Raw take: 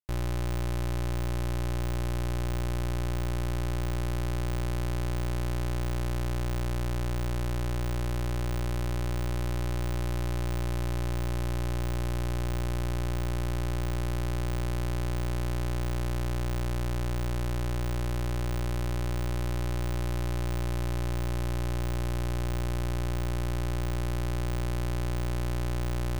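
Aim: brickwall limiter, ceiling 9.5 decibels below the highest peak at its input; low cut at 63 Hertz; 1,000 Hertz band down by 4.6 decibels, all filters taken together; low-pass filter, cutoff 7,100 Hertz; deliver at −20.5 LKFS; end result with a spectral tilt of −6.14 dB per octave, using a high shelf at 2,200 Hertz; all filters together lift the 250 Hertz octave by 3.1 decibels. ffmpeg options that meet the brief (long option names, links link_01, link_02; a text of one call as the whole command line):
ffmpeg -i in.wav -af "highpass=63,lowpass=7100,equalizer=frequency=250:width_type=o:gain=5.5,equalizer=frequency=1000:width_type=o:gain=-7.5,highshelf=frequency=2200:gain=5.5,volume=21dB,alimiter=limit=-8.5dB:level=0:latency=1" out.wav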